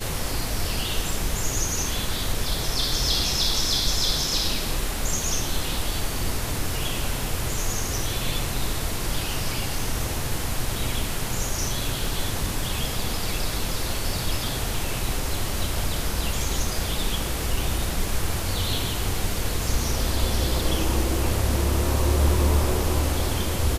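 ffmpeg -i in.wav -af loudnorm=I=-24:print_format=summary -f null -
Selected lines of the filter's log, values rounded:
Input Integrated:    -25.4 LUFS
Input True Peak:      -8.8 dBTP
Input LRA:             4.0 LU
Input Threshold:     -35.4 LUFS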